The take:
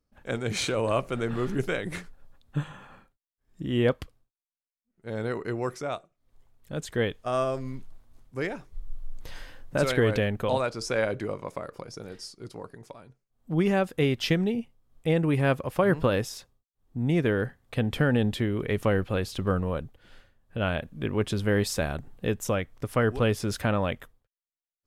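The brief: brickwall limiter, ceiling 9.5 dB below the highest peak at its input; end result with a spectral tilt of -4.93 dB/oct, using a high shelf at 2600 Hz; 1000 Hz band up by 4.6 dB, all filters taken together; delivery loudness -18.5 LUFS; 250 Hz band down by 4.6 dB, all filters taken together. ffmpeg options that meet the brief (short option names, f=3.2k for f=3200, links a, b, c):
-af "equalizer=f=250:t=o:g=-7,equalizer=f=1k:t=o:g=7,highshelf=f=2.6k:g=-3.5,volume=12.5dB,alimiter=limit=-6dB:level=0:latency=1"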